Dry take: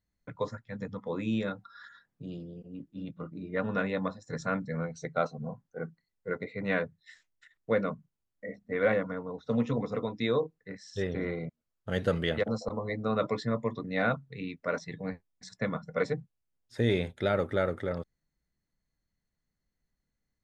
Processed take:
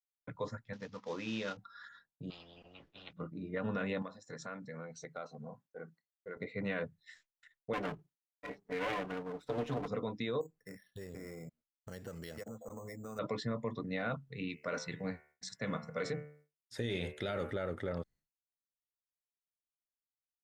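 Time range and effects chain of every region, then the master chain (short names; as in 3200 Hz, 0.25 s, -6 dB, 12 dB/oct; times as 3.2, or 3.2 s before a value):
0.73–1.57 CVSD 32 kbps + low shelf 280 Hz -11.5 dB
2.3–3.13 air absorption 200 m + spectral compressor 10:1
4.02–6.37 HPF 310 Hz 6 dB/oct + compressor 3:1, threshold -40 dBFS
7.73–9.88 minimum comb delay 6.8 ms + HPF 100 Hz 6 dB/oct
10.41–13.19 compressor 4:1, threshold -42 dBFS + careless resampling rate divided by 6×, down filtered, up hold
14.5–17.51 HPF 50 Hz + high shelf 2900 Hz +7 dB + de-hum 74.27 Hz, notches 40
whole clip: expander -56 dBFS; dynamic EQ 2900 Hz, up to +6 dB, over -57 dBFS, Q 4.7; limiter -24.5 dBFS; gain -2.5 dB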